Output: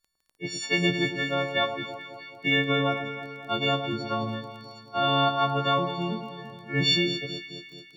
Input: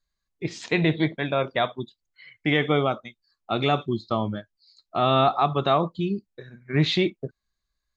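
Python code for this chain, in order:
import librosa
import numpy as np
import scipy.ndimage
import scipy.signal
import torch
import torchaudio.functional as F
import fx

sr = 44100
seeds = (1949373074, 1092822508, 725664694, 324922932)

y = fx.freq_snap(x, sr, grid_st=4)
y = fx.dmg_crackle(y, sr, seeds[0], per_s=14.0, level_db=-37.0)
y = fx.echo_alternate(y, sr, ms=108, hz=1200.0, feedback_pct=75, wet_db=-8)
y = F.gain(torch.from_numpy(y), -5.0).numpy()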